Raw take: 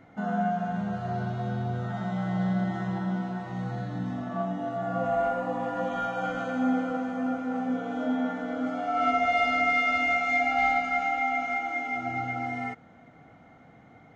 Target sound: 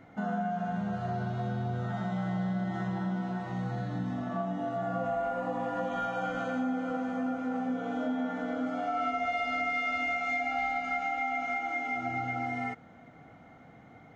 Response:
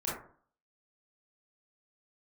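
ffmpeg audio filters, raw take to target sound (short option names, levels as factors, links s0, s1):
-af "acompressor=threshold=0.0355:ratio=4"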